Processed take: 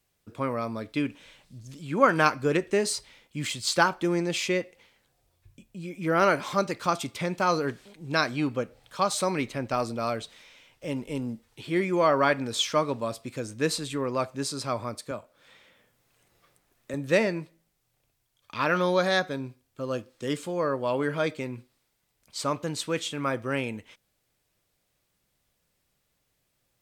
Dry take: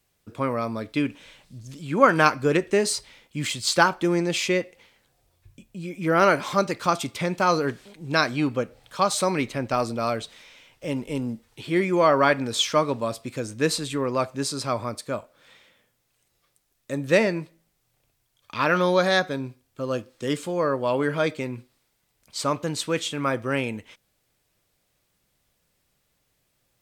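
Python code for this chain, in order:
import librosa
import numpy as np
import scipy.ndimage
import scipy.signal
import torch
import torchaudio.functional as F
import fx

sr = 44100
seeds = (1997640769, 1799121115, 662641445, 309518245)

y = fx.band_squash(x, sr, depth_pct=40, at=(15.11, 16.94))
y = F.gain(torch.from_numpy(y), -3.5).numpy()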